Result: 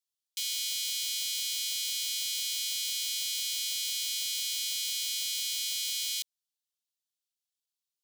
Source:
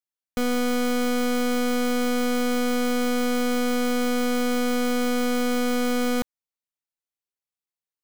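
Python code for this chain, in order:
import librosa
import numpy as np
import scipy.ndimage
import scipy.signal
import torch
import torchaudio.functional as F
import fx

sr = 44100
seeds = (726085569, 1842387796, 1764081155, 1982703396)

y = scipy.signal.sosfilt(scipy.signal.butter(6, 3000.0, 'highpass', fs=sr, output='sos'), x)
y = fx.high_shelf(y, sr, hz=9300.0, db=-5.0)
y = y * librosa.db_to_amplitude(6.0)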